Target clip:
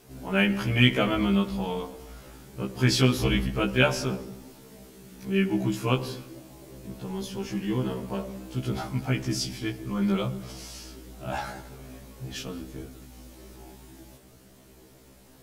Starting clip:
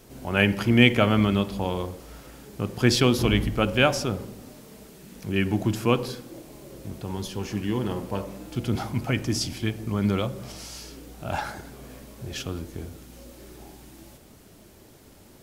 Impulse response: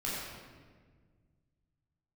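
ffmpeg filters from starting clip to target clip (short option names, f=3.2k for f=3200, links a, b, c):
-filter_complex "[0:a]asplit=2[a][b];[1:a]atrim=start_sample=2205,afade=t=out:st=0.27:d=0.01,atrim=end_sample=12348,adelay=124[c];[b][c]afir=irnorm=-1:irlink=0,volume=-24.5dB[d];[a][d]amix=inputs=2:normalize=0,afftfilt=real='re*1.73*eq(mod(b,3),0)':imag='im*1.73*eq(mod(b,3),0)':win_size=2048:overlap=0.75"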